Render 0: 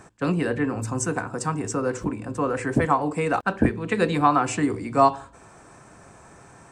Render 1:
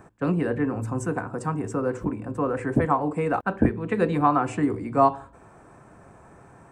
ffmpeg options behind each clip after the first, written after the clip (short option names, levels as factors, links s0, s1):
-af "equalizer=f=5600:w=0.51:g=-14"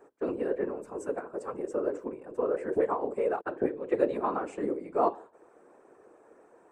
-af "highpass=f=420:t=q:w=4.9,afftfilt=real='hypot(re,im)*cos(2*PI*random(0))':imag='hypot(re,im)*sin(2*PI*random(1))':win_size=512:overlap=0.75,volume=0.531"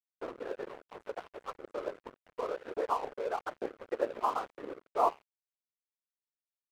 -af "bandpass=f=1000:t=q:w=1.5:csg=0,aeval=exprs='sgn(val(0))*max(abs(val(0))-0.00473,0)':c=same,volume=1.33"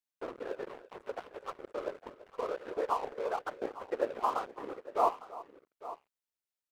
-af "aecho=1:1:334|855:0.133|0.168"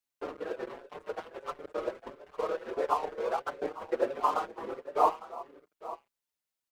-filter_complex "[0:a]asplit=2[s0][s1];[s1]adelay=5.6,afreqshift=1.5[s2];[s0][s2]amix=inputs=2:normalize=1,volume=2"